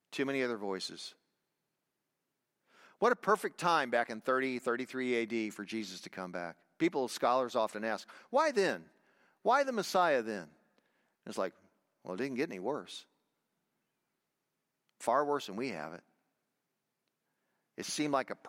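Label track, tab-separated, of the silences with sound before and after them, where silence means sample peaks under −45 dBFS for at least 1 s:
1.100000	3.010000	silence
13.000000	15.010000	silence
15.990000	17.780000	silence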